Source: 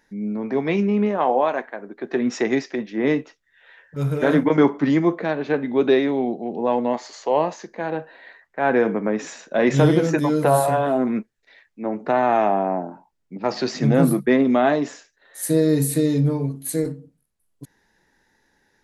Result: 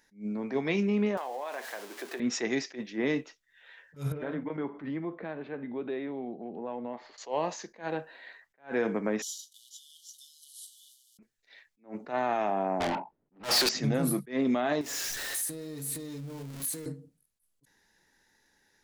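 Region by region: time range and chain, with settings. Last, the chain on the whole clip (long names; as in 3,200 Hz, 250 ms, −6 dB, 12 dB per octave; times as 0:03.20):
0:01.17–0:02.20: converter with a step at zero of −35 dBFS + high-pass filter 390 Hz + downward compressor, threshold −26 dBFS
0:04.12–0:07.18: downward compressor 2 to 1, threshold −30 dBFS + high-frequency loss of the air 460 metres
0:09.22–0:11.19: variable-slope delta modulation 64 kbit/s + downward compressor 12 to 1, threshold −28 dBFS + linear-phase brick-wall high-pass 2,900 Hz
0:12.80–0:13.69: low-pass that shuts in the quiet parts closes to 310 Hz, open at −20 dBFS + downward compressor 1.5 to 1, threshold −35 dBFS + mid-hump overdrive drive 35 dB, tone 7,800 Hz, clips at −15 dBFS
0:14.81–0:16.86: converter with a step at zero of −28 dBFS + downward compressor 5 to 1, threshold −32 dBFS
whole clip: high-shelf EQ 2,400 Hz +9.5 dB; brickwall limiter −11.5 dBFS; level that may rise only so fast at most 230 dB per second; level −7.5 dB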